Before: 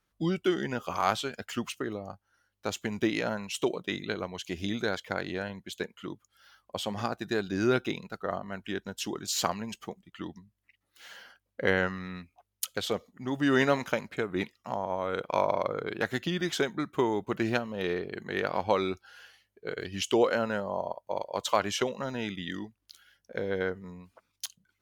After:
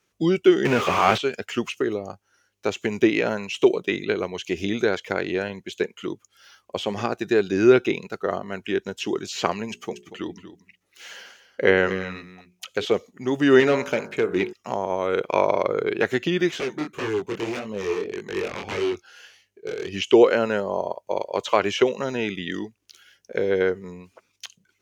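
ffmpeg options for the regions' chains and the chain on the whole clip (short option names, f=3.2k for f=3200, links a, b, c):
-filter_complex "[0:a]asettb=1/sr,asplit=3[a][b][c];[a]atrim=end=0.654[d];[b]atrim=start=0.65:end=1.18,asetpts=PTS-STARTPTS,afade=t=in:d=0.004:c=qsin,afade=t=out:st=0.526:d=0.004:c=qsin,aeval=exprs='val(0)+0.5*0.0562*sgn(val(0))':c=same,highpass=47[e];[c]atrim=start=1.176[f];[d][e]acrossfade=d=0.004:c1=hsin:c2=qsin[g];[g][f]acrossfade=d=0.004:c1=qsin:c2=hsin,asettb=1/sr,asplit=3[h][i][j];[h]atrim=end=9.674[k];[i]atrim=start=9.67:end=12.85,asetpts=PTS-STARTPTS,afade=t=in:d=0.004:c=qsin,afade=t=out:st=3.176:d=0.004:c=qsin,bandreject=f=60:t=h:w=6,bandreject=f=120:t=h:w=6,bandreject=f=180:t=h:w=6,bandreject=f=240:t=h:w=6,bandreject=f=300:t=h:w=6,bandreject=f=360:t=h:w=6,bandreject=f=420:t=h:w=6,aecho=1:1:236:0.224,atrim=end_sample=140238[l];[j]atrim=start=12.846[m];[k][l]acrossfade=d=0.004:c1=hsin:c2=qsin[n];[n][m]acrossfade=d=0.004:c1=qsin:c2=hsin,asettb=1/sr,asplit=3[o][p][q];[o]atrim=end=13.604[r];[p]atrim=start=13.6:end=14.53,asetpts=PTS-STARTPTS,afade=t=in:d=0.004:c=qsin,afade=t=out:st=0.926:d=0.004:c=qsin,bandreject=f=51.97:t=h:w=4,bandreject=f=103.94:t=h:w=4,bandreject=f=155.91:t=h:w=4,bandreject=f=207.88:t=h:w=4,bandreject=f=259.85:t=h:w=4,bandreject=f=311.82:t=h:w=4,bandreject=f=363.79:t=h:w=4,bandreject=f=415.76:t=h:w=4,bandreject=f=467.73:t=h:w=4,bandreject=f=519.7:t=h:w=4,bandreject=f=571.67:t=h:w=4,bandreject=f=623.64:t=h:w=4,bandreject=f=675.61:t=h:w=4,bandreject=f=727.58:t=h:w=4,bandreject=f=779.55:t=h:w=4,bandreject=f=831.52:t=h:w=4,bandreject=f=883.49:t=h:w=4,bandreject=f=935.46:t=h:w=4,bandreject=f=987.43:t=h:w=4,bandreject=f=1.0394k:t=h:w=4,bandreject=f=1.09137k:t=h:w=4,bandreject=f=1.14334k:t=h:w=4,bandreject=f=1.19531k:t=h:w=4,bandreject=f=1.24728k:t=h:w=4,bandreject=f=1.29925k:t=h:w=4,bandreject=f=1.35122k:t=h:w=4,bandreject=f=1.40319k:t=h:w=4,bandreject=f=1.45516k:t=h:w=4,bandreject=f=1.50713k:t=h:w=4,bandreject=f=1.5591k:t=h:w=4,bandreject=f=1.61107k:t=h:w=4,bandreject=f=1.66304k:t=h:w=4,asoftclip=type=hard:threshold=-22.5dB[s];[q]atrim=start=14.526[t];[r][s]acrossfade=d=0.004:c1=hsin:c2=qsin[u];[u][t]acrossfade=d=0.004:c1=qsin:c2=hsin,asettb=1/sr,asplit=3[v][w][x];[v]atrim=end=16.514[y];[w]atrim=start=16.51:end=19.91,asetpts=PTS-STARTPTS,afade=t=in:d=0.004:c=qsin,afade=t=out:st=3.396:d=0.004:c=qsin,aeval=exprs='0.0447*(abs(mod(val(0)/0.0447+3,4)-2)-1)':c=same,flanger=delay=18.5:depth=7.9:speed=1.7[z];[x]atrim=start=19.906[aa];[y][z]acrossfade=d=0.004:c1=hsin:c2=qsin[ab];[ab][aa]acrossfade=d=0.004:c1=qsin:c2=hsin,highpass=74,acrossover=split=3400[ac][ad];[ad]acompressor=threshold=-52dB:ratio=4:attack=1:release=60[ae];[ac][ae]amix=inputs=2:normalize=0,equalizer=f=400:t=o:w=0.67:g=9,equalizer=f=2.5k:t=o:w=0.67:g=7,equalizer=f=6.3k:t=o:w=0.67:g=9,volume=4dB"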